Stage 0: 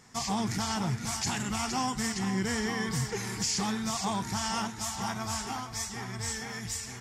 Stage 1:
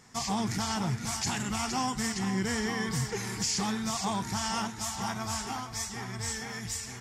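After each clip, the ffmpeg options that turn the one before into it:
ffmpeg -i in.wav -af anull out.wav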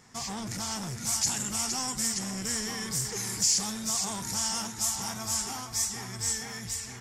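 ffmpeg -i in.wav -filter_complex "[0:a]acrossover=split=5600[link_01][link_02];[link_01]asoftclip=type=tanh:threshold=-34dB[link_03];[link_02]dynaudnorm=framelen=140:gausssize=11:maxgain=10dB[link_04];[link_03][link_04]amix=inputs=2:normalize=0" out.wav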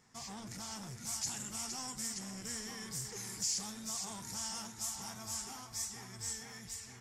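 ffmpeg -i in.wav -af "flanger=delay=4.5:depth=4.4:regen=-79:speed=1.8:shape=sinusoidal,volume=-6dB" out.wav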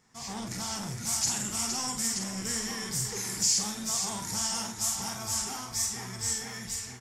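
ffmpeg -i in.wav -filter_complex "[0:a]dynaudnorm=framelen=150:gausssize=3:maxgain=9dB,asplit=2[link_01][link_02];[link_02]adelay=48,volume=-6.5dB[link_03];[link_01][link_03]amix=inputs=2:normalize=0" out.wav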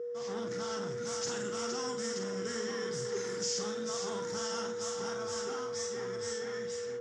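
ffmpeg -i in.wav -af "aeval=exprs='val(0)+0.0158*sin(2*PI*480*n/s)':channel_layout=same,highpass=170,equalizer=frequency=410:width_type=q:width=4:gain=8,equalizer=frequency=820:width_type=q:width=4:gain=-6,equalizer=frequency=1400:width_type=q:width=4:gain=7,equalizer=frequency=2400:width_type=q:width=4:gain=-8,equalizer=frequency=4400:width_type=q:width=4:gain=-8,lowpass=frequency=5500:width=0.5412,lowpass=frequency=5500:width=1.3066,volume=-2.5dB" out.wav

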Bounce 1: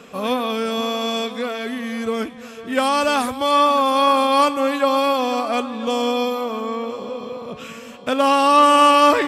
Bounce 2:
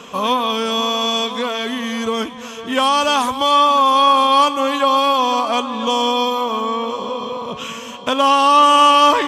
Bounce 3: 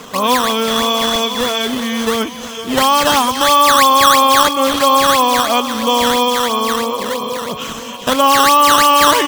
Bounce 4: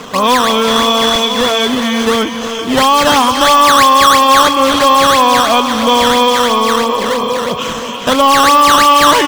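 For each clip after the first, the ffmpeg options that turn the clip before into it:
ffmpeg -i in.wav -filter_complex "[0:a]equalizer=frequency=1000:width_type=o:width=0.33:gain=12,equalizer=frequency=3150:width_type=o:width=0.33:gain=10,equalizer=frequency=6300:width_type=o:width=0.33:gain=9,asplit=2[link_01][link_02];[link_02]acompressor=threshold=-21dB:ratio=6,volume=3dB[link_03];[link_01][link_03]amix=inputs=2:normalize=0,volume=-4.5dB" out.wav
ffmpeg -i in.wav -filter_complex "[0:a]acrossover=split=2800[link_01][link_02];[link_01]acrusher=samples=11:mix=1:aa=0.000001:lfo=1:lforange=17.6:lforate=3[link_03];[link_02]aecho=1:1:405:0.631[link_04];[link_03][link_04]amix=inputs=2:normalize=0,alimiter=level_in=5dB:limit=-1dB:release=50:level=0:latency=1,volume=-1dB" out.wav
ffmpeg -i in.wav -filter_complex "[0:a]asplit=2[link_01][link_02];[link_02]adynamicsmooth=sensitivity=5.5:basefreq=7200,volume=1dB[link_03];[link_01][link_03]amix=inputs=2:normalize=0,asoftclip=type=tanh:threshold=-1.5dB,asplit=2[link_04][link_05];[link_05]adelay=360,highpass=300,lowpass=3400,asoftclip=type=hard:threshold=-11dB,volume=-7dB[link_06];[link_04][link_06]amix=inputs=2:normalize=0,volume=-1dB" out.wav

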